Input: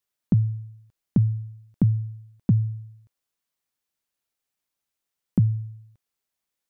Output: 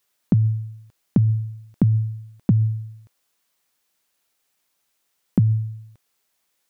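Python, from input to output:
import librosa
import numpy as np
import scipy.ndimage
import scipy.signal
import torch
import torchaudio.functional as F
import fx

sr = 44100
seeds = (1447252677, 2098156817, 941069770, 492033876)

p1 = fx.low_shelf(x, sr, hz=200.0, db=-7.5)
p2 = fx.over_compress(p1, sr, threshold_db=-30.0, ratio=-1.0)
p3 = p1 + F.gain(torch.from_numpy(p2), -2.0).numpy()
y = F.gain(torch.from_numpy(p3), 5.5).numpy()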